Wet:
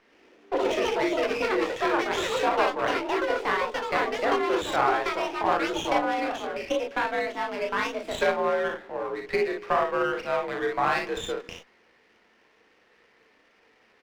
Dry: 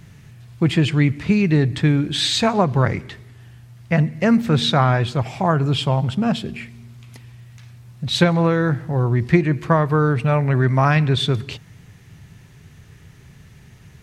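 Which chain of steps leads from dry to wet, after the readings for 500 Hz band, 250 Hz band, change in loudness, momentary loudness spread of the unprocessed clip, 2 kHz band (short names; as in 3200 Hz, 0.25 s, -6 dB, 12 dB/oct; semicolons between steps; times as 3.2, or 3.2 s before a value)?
-2.0 dB, -13.5 dB, -8.0 dB, 7 LU, -1.5 dB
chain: on a send: early reflections 36 ms -5.5 dB, 59 ms -5 dB; on the sum: echoes that change speed 0.104 s, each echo +6 st, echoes 3; mistuned SSB +57 Hz 320–3300 Hz; running maximum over 5 samples; gain -6.5 dB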